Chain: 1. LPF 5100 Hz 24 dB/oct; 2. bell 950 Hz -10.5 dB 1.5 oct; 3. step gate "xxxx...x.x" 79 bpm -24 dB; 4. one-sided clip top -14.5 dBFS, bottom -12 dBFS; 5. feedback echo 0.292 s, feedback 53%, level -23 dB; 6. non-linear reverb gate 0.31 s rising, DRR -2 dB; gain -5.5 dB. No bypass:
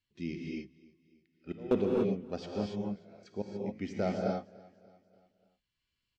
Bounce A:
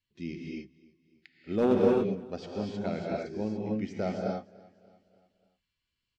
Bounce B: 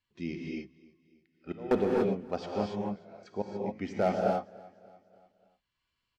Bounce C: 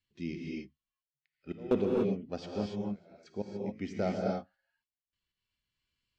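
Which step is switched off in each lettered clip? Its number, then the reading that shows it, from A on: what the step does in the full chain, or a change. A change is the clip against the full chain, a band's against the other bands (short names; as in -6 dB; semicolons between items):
3, 4 kHz band -2.0 dB; 2, 1 kHz band +7.0 dB; 5, momentary loudness spread change -1 LU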